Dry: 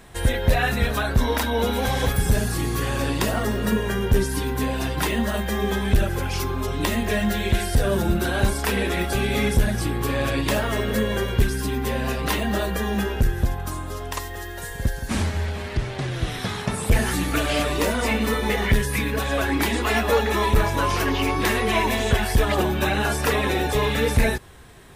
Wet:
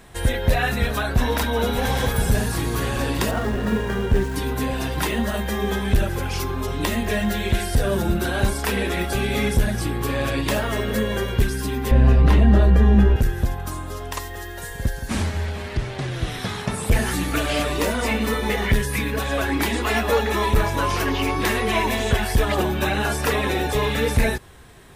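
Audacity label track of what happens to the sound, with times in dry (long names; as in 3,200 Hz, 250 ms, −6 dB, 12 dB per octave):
0.570000	1.720000	delay throw 590 ms, feedback 80%, level −10 dB
3.310000	4.360000	running median over 9 samples
11.910000	13.160000	RIAA equalisation playback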